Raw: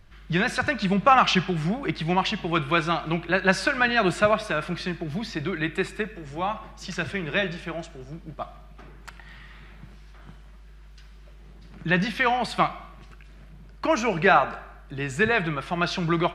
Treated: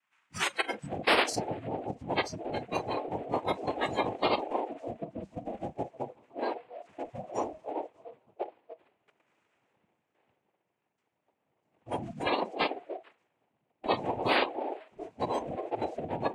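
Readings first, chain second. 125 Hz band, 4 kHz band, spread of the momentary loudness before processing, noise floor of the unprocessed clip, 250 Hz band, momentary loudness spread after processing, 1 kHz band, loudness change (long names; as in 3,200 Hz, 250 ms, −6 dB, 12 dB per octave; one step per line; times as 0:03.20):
−14.0 dB, −6.0 dB, 16 LU, −47 dBFS, −10.5 dB, 14 LU, −8.0 dB, −9.0 dB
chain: on a send: echo through a band-pass that steps 148 ms, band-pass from 200 Hz, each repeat 1.4 octaves, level −8 dB
on the sum: band-pass filter sweep 1,500 Hz → 640 Hz, 0:00.11–0:01.31
cochlear-implant simulation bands 4
noise reduction from a noise print of the clip's start 28 dB
every bin compressed towards the loudest bin 2 to 1
level −3.5 dB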